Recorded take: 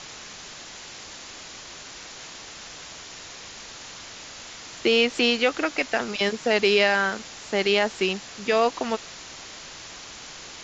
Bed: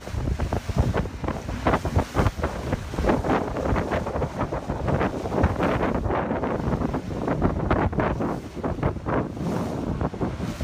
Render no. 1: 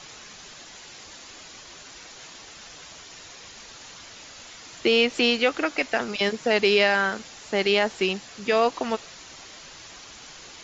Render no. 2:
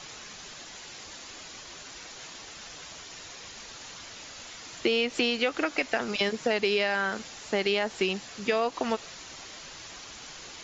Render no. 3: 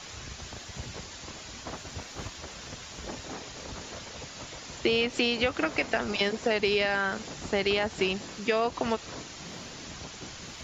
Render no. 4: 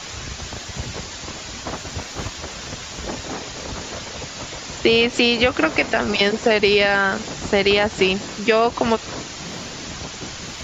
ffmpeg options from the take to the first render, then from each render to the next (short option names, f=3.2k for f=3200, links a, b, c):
-af "afftdn=nr=6:nf=-42"
-af "acompressor=threshold=-22dB:ratio=6"
-filter_complex "[1:a]volume=-19dB[a];[0:a][a]amix=inputs=2:normalize=0"
-af "volume=10dB,alimiter=limit=-3dB:level=0:latency=1"